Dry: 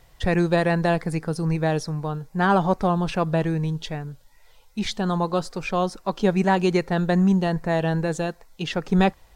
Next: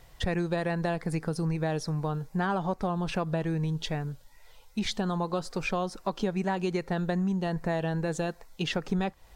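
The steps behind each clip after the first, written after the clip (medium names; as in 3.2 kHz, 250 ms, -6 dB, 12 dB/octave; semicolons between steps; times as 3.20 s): compression, threshold -26 dBFS, peak gain reduction 12 dB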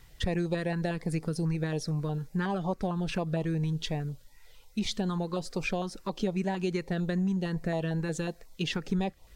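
step-sequenced notch 11 Hz 620–1600 Hz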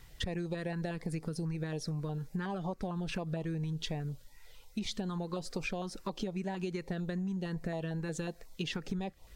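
compression, threshold -33 dBFS, peak gain reduction 9.5 dB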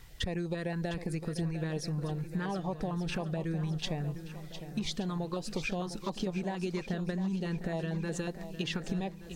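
shuffle delay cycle 1174 ms, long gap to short 1.5:1, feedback 35%, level -11 dB; trim +2 dB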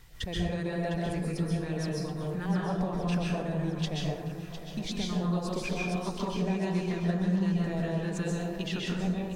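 plate-style reverb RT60 0.93 s, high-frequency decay 0.55×, pre-delay 115 ms, DRR -3.5 dB; trim -2 dB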